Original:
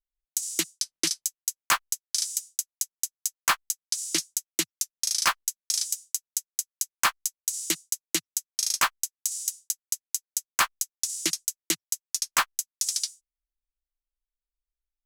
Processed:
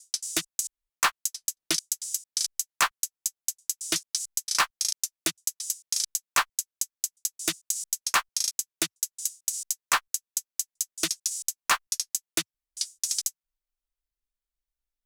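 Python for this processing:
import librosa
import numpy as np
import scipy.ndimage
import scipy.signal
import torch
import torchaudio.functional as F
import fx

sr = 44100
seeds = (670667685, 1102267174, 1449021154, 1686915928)

y = fx.block_reorder(x, sr, ms=224.0, group=4)
y = fx.doppler_dist(y, sr, depth_ms=0.38)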